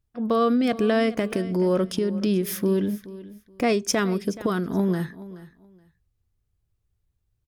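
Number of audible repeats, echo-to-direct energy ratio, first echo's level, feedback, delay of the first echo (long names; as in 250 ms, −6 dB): 2, −17.0 dB, −17.0 dB, 20%, 425 ms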